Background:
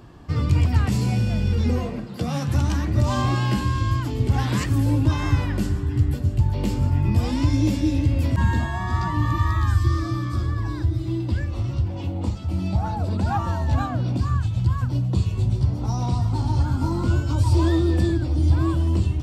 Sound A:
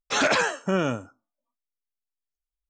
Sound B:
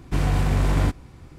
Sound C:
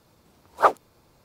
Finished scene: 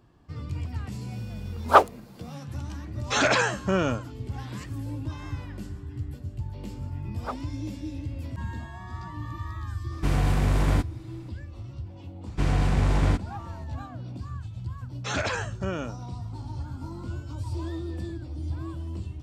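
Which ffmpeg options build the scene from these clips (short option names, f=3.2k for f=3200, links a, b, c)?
-filter_complex "[3:a]asplit=2[a][b];[1:a]asplit=2[c][d];[2:a]asplit=2[e][f];[0:a]volume=-14dB[g];[a]acontrast=60[h];[f]lowpass=8.5k[i];[h]atrim=end=1.24,asetpts=PTS-STARTPTS,volume=-2dB,afade=t=in:d=0.004:c=hsin,afade=t=out:st=1.236:d=0.004:c=hsin,adelay=1110[j];[c]atrim=end=2.69,asetpts=PTS-STARTPTS,volume=-0.5dB,afade=t=in:d=0.004:c=hsin,afade=t=out:st=2.686:d=0.004:c=hsin,adelay=3000[k];[b]atrim=end=1.24,asetpts=PTS-STARTPTS,volume=-17dB,afade=t=in:d=0.004:c=hsin,afade=t=out:st=1.236:d=0.004:c=hsin,adelay=6640[l];[e]atrim=end=1.38,asetpts=PTS-STARTPTS,volume=-2dB,afade=t=in:d=0.004:c=hsin,afade=t=out:st=1.376:d=0.004:c=hsin,adelay=9910[m];[i]atrim=end=1.38,asetpts=PTS-STARTPTS,volume=-2dB,afade=t=in:d=0.004:c=hsin,afade=t=out:st=1.376:d=0.004:c=hsin,adelay=12260[n];[d]atrim=end=2.69,asetpts=PTS-STARTPTS,volume=-7.5dB,afade=t=in:d=0.004:c=hsin,afade=t=out:st=2.686:d=0.004:c=hsin,adelay=14940[o];[g][j][k][l][m][n][o]amix=inputs=7:normalize=0"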